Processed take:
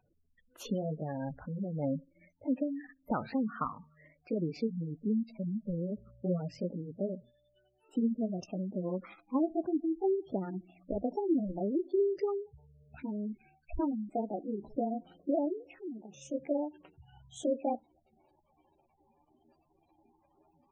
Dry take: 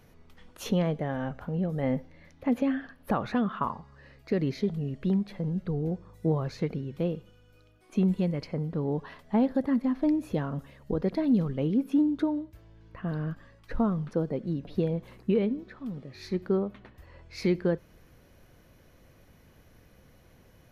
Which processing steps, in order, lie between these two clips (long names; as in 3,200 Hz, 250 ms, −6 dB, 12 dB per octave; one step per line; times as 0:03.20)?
pitch glide at a constant tempo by +8.5 semitones starting unshifted
gate on every frequency bin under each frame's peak −15 dB strong
noise reduction from a noise print of the clip's start 15 dB
level −4 dB